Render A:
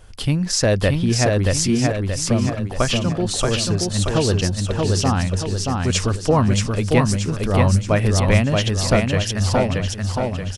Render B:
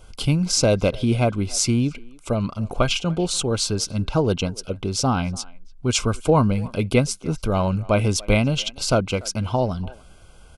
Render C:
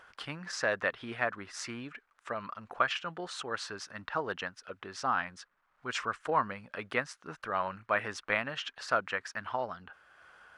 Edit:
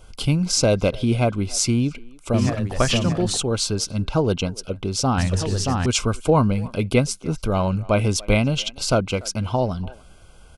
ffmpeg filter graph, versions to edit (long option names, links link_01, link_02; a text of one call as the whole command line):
ffmpeg -i take0.wav -i take1.wav -filter_complex "[0:a]asplit=2[link_01][link_02];[1:a]asplit=3[link_03][link_04][link_05];[link_03]atrim=end=2.342[link_06];[link_01]atrim=start=2.338:end=3.372[link_07];[link_04]atrim=start=3.368:end=5.182[link_08];[link_02]atrim=start=5.178:end=5.862[link_09];[link_05]atrim=start=5.858[link_10];[link_06][link_07]acrossfade=duration=0.004:curve1=hsin:curve2=hsin[link_11];[link_11][link_08]acrossfade=duration=0.004:curve1=hsin:curve2=hsin[link_12];[link_12][link_09]acrossfade=duration=0.004:curve1=hsin:curve2=hsin[link_13];[link_13][link_10]acrossfade=duration=0.004:curve1=hsin:curve2=hsin" out.wav